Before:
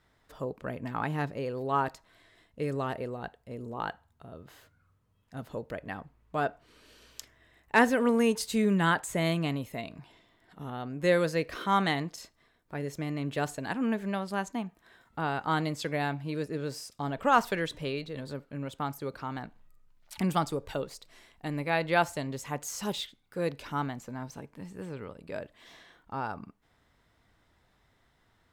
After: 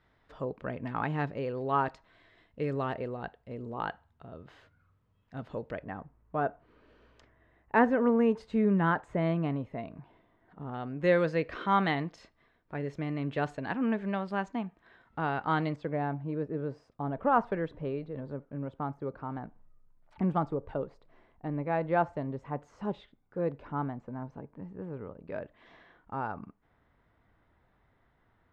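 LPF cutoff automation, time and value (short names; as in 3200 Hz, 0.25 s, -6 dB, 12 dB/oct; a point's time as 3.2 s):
3300 Hz
from 5.84 s 1400 Hz
from 10.74 s 2700 Hz
from 15.76 s 1100 Hz
from 25.28 s 1900 Hz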